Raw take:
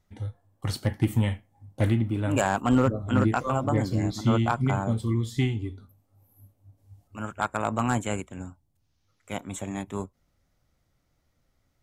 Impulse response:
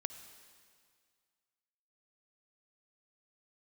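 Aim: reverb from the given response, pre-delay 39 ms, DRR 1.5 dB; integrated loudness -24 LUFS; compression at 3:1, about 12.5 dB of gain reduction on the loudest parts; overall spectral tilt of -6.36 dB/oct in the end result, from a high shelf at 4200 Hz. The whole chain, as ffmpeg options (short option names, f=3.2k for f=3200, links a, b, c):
-filter_complex "[0:a]highshelf=f=4.2k:g=-8.5,acompressor=threshold=-35dB:ratio=3,asplit=2[a][b];[1:a]atrim=start_sample=2205,adelay=39[c];[b][c]afir=irnorm=-1:irlink=0,volume=-0.5dB[d];[a][d]amix=inputs=2:normalize=0,volume=11dB"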